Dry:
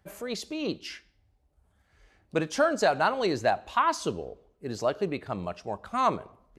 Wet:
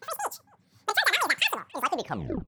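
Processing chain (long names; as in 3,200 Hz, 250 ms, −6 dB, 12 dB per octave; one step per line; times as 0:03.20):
turntable brake at the end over 2.12 s
change of speed 2.66×
far-end echo of a speakerphone 280 ms, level −28 dB
level +1 dB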